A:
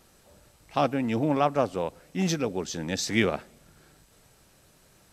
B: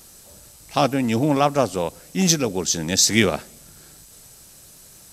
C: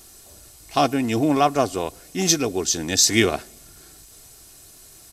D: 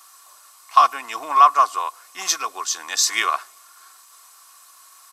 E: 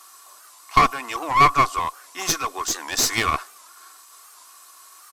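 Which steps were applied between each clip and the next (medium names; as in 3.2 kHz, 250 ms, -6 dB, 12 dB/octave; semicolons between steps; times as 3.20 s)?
tone controls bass +2 dB, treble +13 dB; trim +5 dB
comb 2.8 ms, depth 49%; trim -1 dB
resonant high-pass 1.1 kHz, resonance Q 9.2; trim -2.5 dB
one-sided clip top -24.5 dBFS; peaking EQ 300 Hz +7 dB 1.5 oct; warped record 78 rpm, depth 160 cents; trim +1 dB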